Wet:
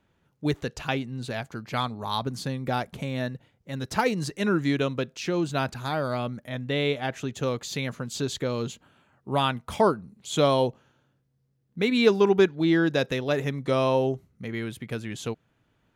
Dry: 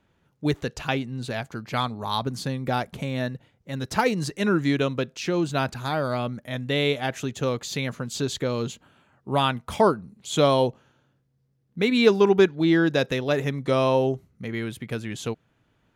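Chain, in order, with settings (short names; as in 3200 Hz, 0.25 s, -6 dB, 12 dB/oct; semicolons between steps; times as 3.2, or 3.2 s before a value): 6.48–7.32 high shelf 4800 Hz -> 6900 Hz -8 dB; gain -2 dB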